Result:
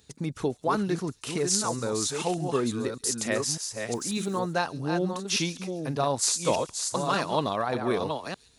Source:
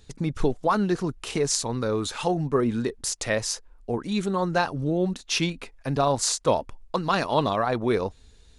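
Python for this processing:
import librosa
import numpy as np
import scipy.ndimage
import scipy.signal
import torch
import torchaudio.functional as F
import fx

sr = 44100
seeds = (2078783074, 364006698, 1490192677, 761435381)

y = fx.reverse_delay(x, sr, ms=596, wet_db=-5.5)
y = scipy.signal.sosfilt(scipy.signal.butter(2, 100.0, 'highpass', fs=sr, output='sos'), y)
y = fx.high_shelf(y, sr, hz=7400.0, db=9.0)
y = fx.dmg_noise_colour(y, sr, seeds[0], colour='white', level_db=-59.0, at=(3.93, 4.38), fade=0.02)
y = fx.echo_wet_highpass(y, sr, ms=138, feedback_pct=41, hz=5600.0, wet_db=-11.0)
y = y * librosa.db_to_amplitude(-4.0)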